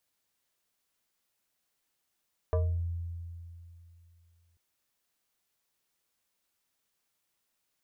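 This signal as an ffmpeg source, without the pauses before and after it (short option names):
-f lavfi -i "aevalsrc='0.0708*pow(10,-3*t/2.76)*sin(2*PI*85.1*t+1.2*pow(10,-3*t/0.42)*sin(2*PI*6.36*85.1*t))':d=2.04:s=44100"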